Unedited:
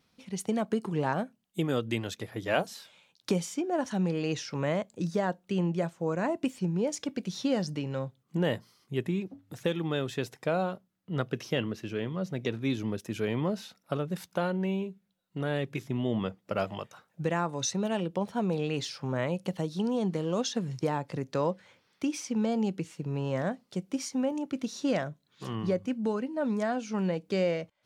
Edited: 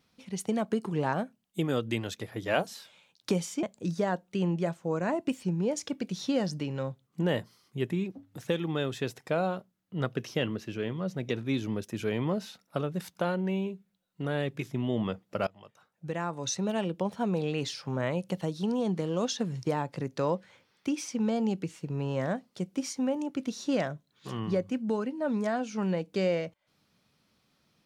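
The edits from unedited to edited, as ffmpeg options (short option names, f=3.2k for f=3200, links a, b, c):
-filter_complex "[0:a]asplit=3[a][b][c];[a]atrim=end=3.632[d];[b]atrim=start=4.788:end=16.63,asetpts=PTS-STARTPTS,afade=t=out:st=11.838:d=0.004:c=hsin:silence=0.0707946[e];[c]atrim=start=16.63,asetpts=PTS-STARTPTS,afade=t=in:d=1.21:silence=0.0707946[f];[e][f]concat=n=2:v=0:a=1[g];[d][g]acrossfade=d=0.004:c1=hsin:c2=hsin"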